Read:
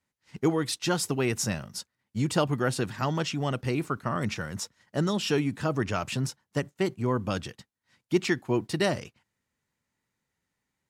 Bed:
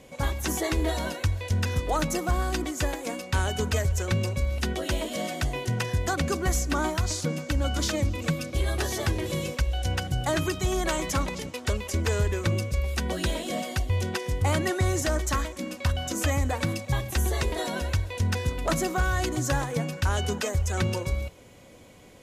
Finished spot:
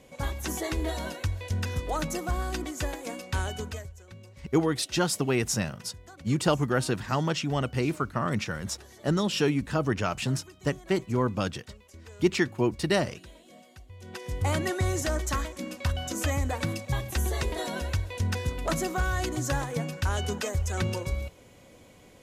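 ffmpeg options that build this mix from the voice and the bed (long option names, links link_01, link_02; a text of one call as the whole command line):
ffmpeg -i stem1.wav -i stem2.wav -filter_complex "[0:a]adelay=4100,volume=1dB[link_01];[1:a]volume=15.5dB,afade=type=out:start_time=3.41:duration=0.52:silence=0.125893,afade=type=in:start_time=13.99:duration=0.47:silence=0.105925[link_02];[link_01][link_02]amix=inputs=2:normalize=0" out.wav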